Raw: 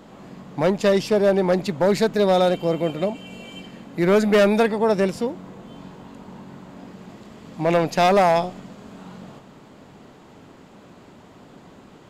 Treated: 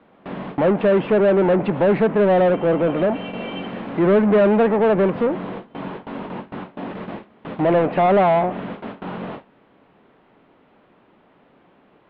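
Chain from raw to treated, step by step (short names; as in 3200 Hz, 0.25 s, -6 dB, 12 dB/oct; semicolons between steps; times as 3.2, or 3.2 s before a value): added noise pink -46 dBFS; treble ducked by the level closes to 2000 Hz, closed at -18 dBFS; low shelf 400 Hz +8 dB; overdrive pedal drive 21 dB, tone 1100 Hz, clips at -10 dBFS; steep low-pass 3500 Hz 36 dB/oct; low shelf 97 Hz -10.5 dB; gate with hold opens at -21 dBFS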